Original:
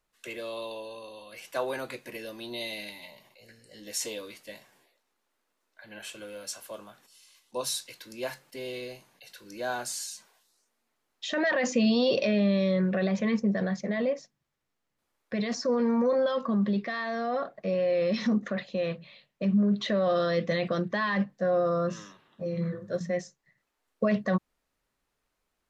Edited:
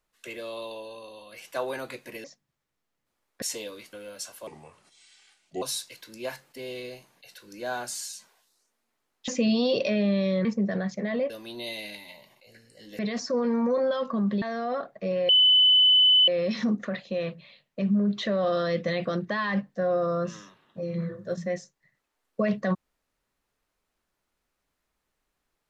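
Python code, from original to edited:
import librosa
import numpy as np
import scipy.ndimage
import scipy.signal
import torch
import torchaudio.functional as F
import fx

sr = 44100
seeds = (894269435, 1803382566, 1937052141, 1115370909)

y = fx.edit(x, sr, fx.swap(start_s=2.24, length_s=1.69, other_s=14.16, other_length_s=1.18),
    fx.cut(start_s=4.44, length_s=1.77),
    fx.speed_span(start_s=6.75, length_s=0.85, speed=0.74),
    fx.cut(start_s=11.26, length_s=0.39),
    fx.cut(start_s=12.82, length_s=0.49),
    fx.cut(start_s=16.77, length_s=0.27),
    fx.insert_tone(at_s=17.91, length_s=0.99, hz=3010.0, db=-15.0), tone=tone)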